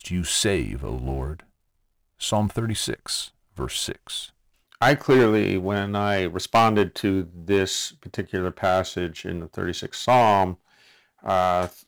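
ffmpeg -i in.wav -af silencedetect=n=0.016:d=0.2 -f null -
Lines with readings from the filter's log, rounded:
silence_start: 1.40
silence_end: 2.21 | silence_duration: 0.81
silence_start: 3.28
silence_end: 3.57 | silence_duration: 0.30
silence_start: 4.26
silence_end: 4.72 | silence_duration: 0.46
silence_start: 10.54
silence_end: 11.24 | silence_duration: 0.70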